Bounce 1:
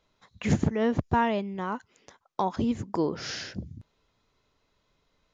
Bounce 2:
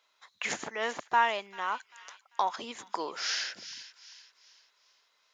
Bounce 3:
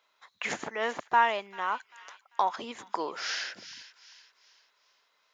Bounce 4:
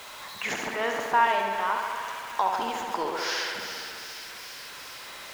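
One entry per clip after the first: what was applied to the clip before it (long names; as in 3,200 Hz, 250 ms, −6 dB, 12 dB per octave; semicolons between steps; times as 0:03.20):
high-pass filter 1,000 Hz 12 dB per octave; delay with a high-pass on its return 393 ms, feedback 39%, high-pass 2,300 Hz, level −11 dB; level +4.5 dB
parametric band 7,100 Hz −6.5 dB 2.3 octaves; level +2.5 dB
converter with a step at zero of −38 dBFS; tape delay 68 ms, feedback 88%, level −5 dB, low-pass 5,400 Hz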